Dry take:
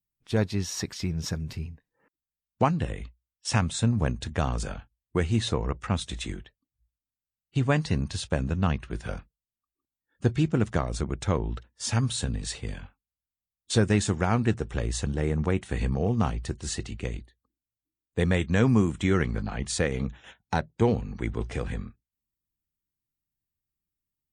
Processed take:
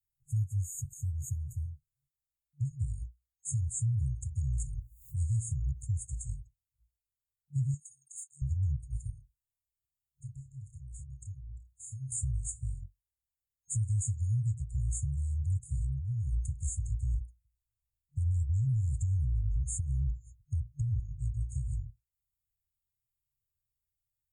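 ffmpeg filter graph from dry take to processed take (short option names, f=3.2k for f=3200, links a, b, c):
-filter_complex "[0:a]asettb=1/sr,asplit=3[a][b][c];[a]atrim=end=4.734[d];[b]atrim=start=4.73:end=5.93,asetpts=PTS-STARTPTS,afade=t=in:d=0.004:c=qsin,afade=t=out:st=1.196:d=0.004:c=qsin,acompressor=mode=upward:threshold=-26dB:ratio=2.5:attack=3.2:release=140:knee=2.83:detection=peak,highshelf=f=7.9k:g=5[e];[c]atrim=start=5.926[f];[d][e]acrossfade=d=0.004:c1=hsin:c2=qsin[g];[g][f]acrossfade=d=0.004:c1=qsin:c2=hsin,asettb=1/sr,asplit=3[h][i][j];[h]atrim=end=7.744[k];[i]atrim=start=7.74:end=8.42,asetpts=PTS-STARTPTS,afade=t=in:d=0.004:c=qsin,afade=t=out:st=0.676:d=0.004:c=qsin,highpass=f=490:w=0.5412,highpass=f=490:w=1.3066,deesser=0.7[l];[j]atrim=start=8.416[m];[k][l]acrossfade=d=0.004:c1=hsin:c2=qsin[n];[n][m]acrossfade=d=0.004:c1=qsin:c2=hsin,asettb=1/sr,asplit=3[o][p][q];[o]atrim=end=9.104[r];[p]atrim=start=9.1:end=12.12,asetpts=PTS-STARTPTS,afade=t=in:d=0.004:c=qsin,afade=t=out:st=3.016:d=0.004:c=qsin,acompressor=threshold=-45dB:ratio=2.5:attack=3.2:release=140:knee=1:detection=peak,asplit=2[s][t];[t]adelay=30,volume=-5.5dB[u];[s][u]amix=inputs=2:normalize=0,atrim=end_sample=133182[v];[q]atrim=start=12.116[w];[r][v]acrossfade=d=0.004:c1=hsin:c2=qsin[x];[x][w]acrossfade=d=0.004:c1=qsin:c2=hsin,asettb=1/sr,asplit=3[y][z][aa];[y]atrim=end=15.804[ab];[z]atrim=start=15.8:end=21,asetpts=PTS-STARTPTS,afade=t=in:d=0.004:c=qsin,afade=t=out:st=5.196:d=0.004:c=qsin,acompressor=threshold=-28dB:ratio=2.5:attack=3.2:release=140:knee=1:detection=peak,asubboost=boost=7:cutoff=110[ac];[aa]atrim=start=20.996[ad];[ab][ac]acrossfade=d=0.004:c1=hsin:c2=qsin[ae];[ae][ad]acrossfade=d=0.004:c1=qsin:c2=hsin,afftfilt=real='re*(1-between(b*sr/4096,140,6500))':imag='im*(1-between(b*sr/4096,140,6500))':win_size=4096:overlap=0.75,alimiter=limit=-24dB:level=0:latency=1:release=138"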